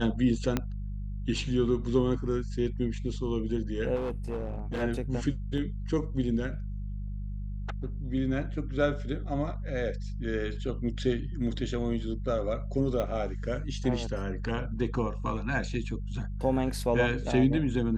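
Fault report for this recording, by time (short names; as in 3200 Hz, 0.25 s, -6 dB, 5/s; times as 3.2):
hum 50 Hz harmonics 4 -35 dBFS
0.57 pop -13 dBFS
3.95–4.83 clipped -28.5 dBFS
13 pop -19 dBFS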